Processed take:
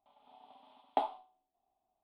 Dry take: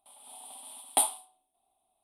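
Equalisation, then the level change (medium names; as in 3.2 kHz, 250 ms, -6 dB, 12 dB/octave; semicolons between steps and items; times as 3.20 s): dynamic bell 580 Hz, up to +6 dB, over -47 dBFS, Q 0.85; distance through air 250 m; tape spacing loss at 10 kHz 22 dB; -2.0 dB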